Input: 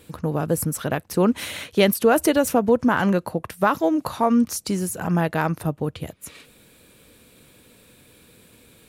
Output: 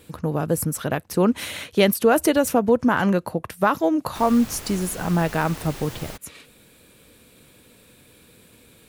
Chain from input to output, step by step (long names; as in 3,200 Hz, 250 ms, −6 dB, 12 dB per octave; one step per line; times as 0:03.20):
0:04.14–0:06.16: background noise pink −37 dBFS